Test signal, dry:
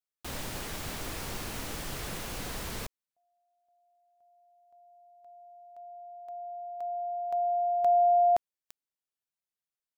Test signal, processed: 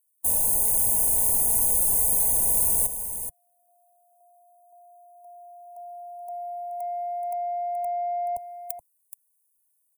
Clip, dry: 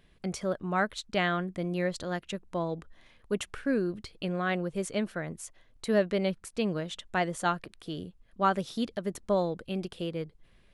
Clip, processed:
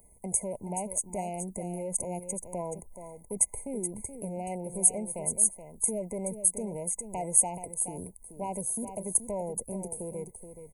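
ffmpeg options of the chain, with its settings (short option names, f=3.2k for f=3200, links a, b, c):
-filter_complex "[0:a]asoftclip=type=tanh:threshold=-16.5dB,asuperstop=centerf=3600:order=8:qfactor=0.58,acrossover=split=120[a][b];[b]acompressor=threshold=-36dB:ratio=5:attack=3.6:release=24:knee=2.83:detection=peak[c];[a][c]amix=inputs=2:normalize=0,crystalizer=i=9.5:c=0,equalizer=f=160:t=o:w=0.33:g=-6,equalizer=f=315:t=o:w=0.33:g=-9,equalizer=f=1.25k:t=o:w=0.33:g=-4,equalizer=f=10k:t=o:w=0.33:g=5,asplit=2[d][e];[e]aecho=0:1:426:0.335[f];[d][f]amix=inputs=2:normalize=0,afftfilt=real='re*eq(mod(floor(b*sr/1024/1000),2),0)':imag='im*eq(mod(floor(b*sr/1024/1000),2),0)':win_size=1024:overlap=0.75,volume=2dB"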